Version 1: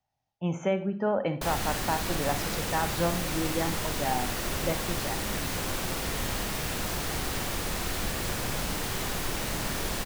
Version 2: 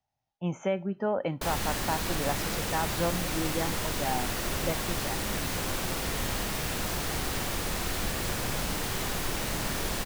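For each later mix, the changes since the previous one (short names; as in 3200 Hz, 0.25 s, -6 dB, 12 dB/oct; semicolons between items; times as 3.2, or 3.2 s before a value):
speech: send off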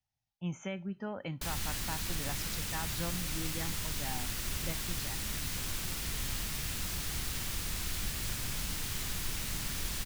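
background: send -8.0 dB; master: add bell 580 Hz -14 dB 2.6 oct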